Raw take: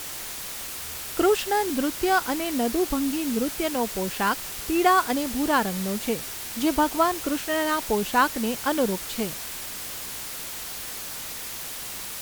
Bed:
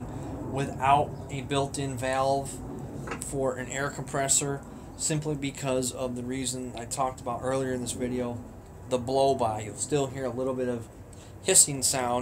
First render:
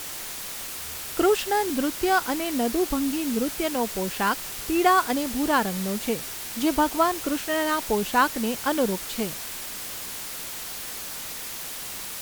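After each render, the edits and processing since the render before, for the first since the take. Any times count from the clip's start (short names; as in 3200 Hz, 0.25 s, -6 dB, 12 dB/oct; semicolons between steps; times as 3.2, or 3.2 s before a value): de-hum 60 Hz, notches 2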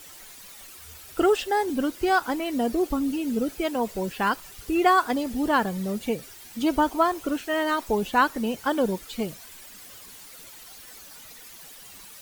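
denoiser 13 dB, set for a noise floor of -35 dBFS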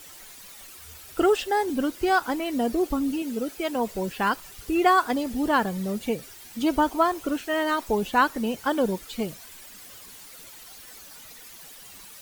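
3.22–3.7 low shelf 190 Hz -11.5 dB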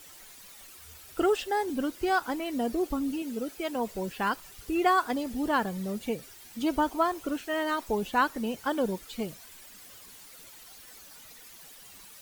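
gain -4.5 dB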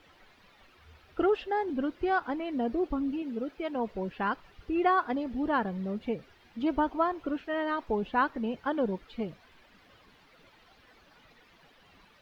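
air absorption 330 m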